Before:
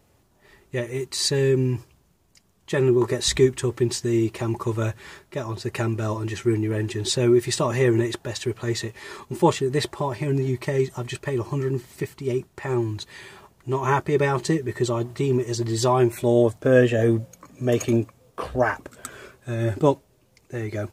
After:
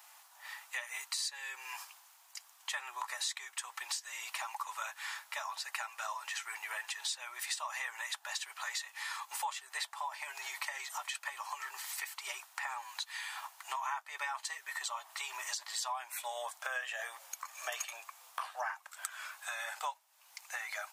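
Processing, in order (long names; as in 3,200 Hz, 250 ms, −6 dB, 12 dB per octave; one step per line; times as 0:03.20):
Butterworth high-pass 780 Hz 48 dB per octave
high-shelf EQ 9,000 Hz +4.5 dB
downward compressor 5 to 1, threshold −47 dBFS, peak gain reduction 25 dB
level +8.5 dB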